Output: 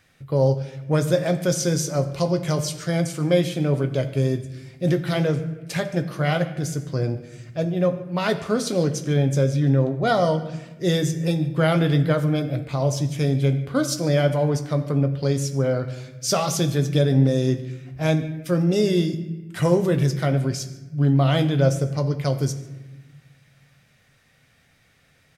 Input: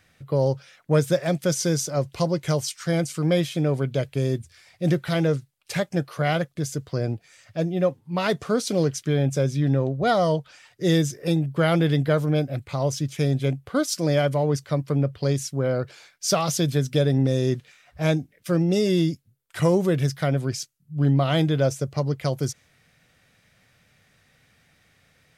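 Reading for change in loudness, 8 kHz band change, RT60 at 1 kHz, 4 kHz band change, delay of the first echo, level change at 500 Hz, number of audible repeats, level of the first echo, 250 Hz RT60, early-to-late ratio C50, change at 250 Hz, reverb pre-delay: +1.5 dB, +0.5 dB, 1.0 s, +0.5 dB, 146 ms, +1.0 dB, 1, -22.0 dB, 1.8 s, 11.5 dB, +1.5 dB, 7 ms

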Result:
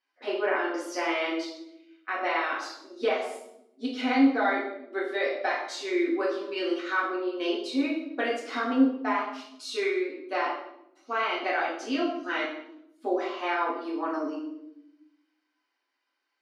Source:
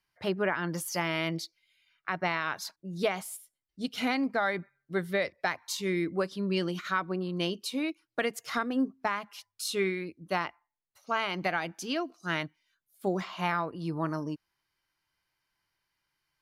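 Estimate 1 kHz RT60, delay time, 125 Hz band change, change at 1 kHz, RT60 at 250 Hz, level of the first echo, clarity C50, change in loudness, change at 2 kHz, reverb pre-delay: 0.70 s, no echo, under -25 dB, +3.5 dB, 1.4 s, no echo, 4.0 dB, +3.0 dB, +2.5 dB, 4 ms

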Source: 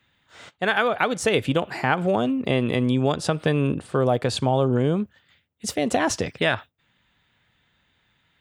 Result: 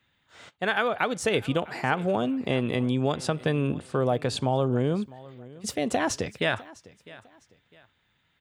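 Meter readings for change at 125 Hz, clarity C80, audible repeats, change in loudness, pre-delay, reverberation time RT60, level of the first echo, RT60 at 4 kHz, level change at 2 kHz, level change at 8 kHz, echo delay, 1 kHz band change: -4.0 dB, no reverb, 2, -4.0 dB, no reverb, no reverb, -20.5 dB, no reverb, -4.0 dB, -4.0 dB, 654 ms, -4.0 dB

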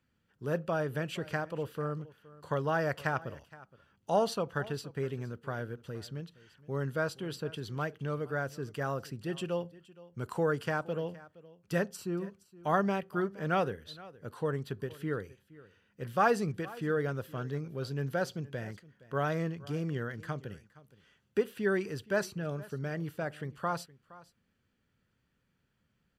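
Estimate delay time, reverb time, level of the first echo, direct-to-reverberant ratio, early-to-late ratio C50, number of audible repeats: 468 ms, no reverb, -20.0 dB, no reverb, no reverb, 1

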